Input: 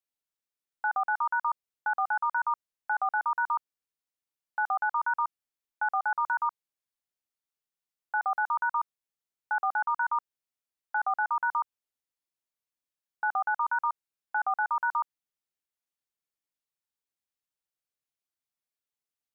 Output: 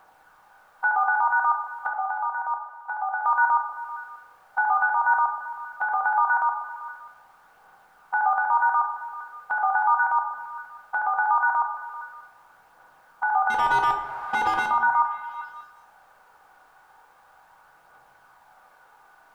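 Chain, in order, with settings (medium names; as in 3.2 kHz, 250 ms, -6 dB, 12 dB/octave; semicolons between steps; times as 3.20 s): spectral levelling over time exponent 0.6; in parallel at +2.5 dB: compression, threshold -36 dBFS, peak gain reduction 12 dB; on the sum: peak limiter -24.5 dBFS, peak gain reduction 10.5 dB; 1.87–3.22 s: ladder high-pass 480 Hz, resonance 45%; 13.50–14.66 s: overdrive pedal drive 28 dB, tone 1.1 kHz, clips at -24.5 dBFS; phaser 0.39 Hz, delay 3 ms, feedback 27%; on a send: repeats whose band climbs or falls 195 ms, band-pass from 610 Hz, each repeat 0.7 oct, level -11 dB; on the sum: simulated room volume 150 m³, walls mixed, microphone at 0.64 m; trim +8.5 dB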